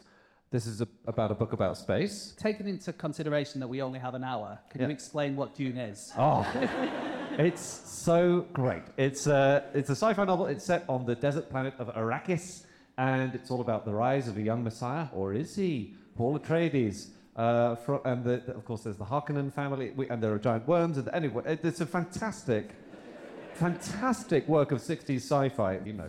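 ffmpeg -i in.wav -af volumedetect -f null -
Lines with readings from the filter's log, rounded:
mean_volume: -30.3 dB
max_volume: -15.9 dB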